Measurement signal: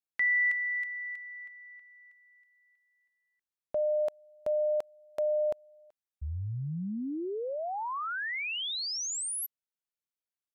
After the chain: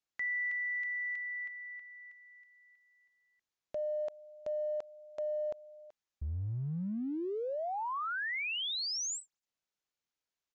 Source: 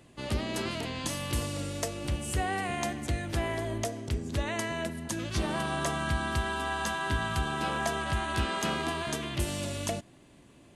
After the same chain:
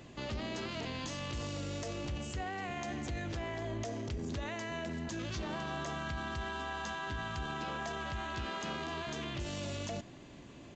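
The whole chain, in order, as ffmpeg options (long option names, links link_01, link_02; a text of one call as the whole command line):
ffmpeg -i in.wav -af "acompressor=threshold=-39dB:ratio=5:attack=0.13:release=26:knee=1:detection=rms,aresample=16000,aresample=44100,volume=4.5dB" out.wav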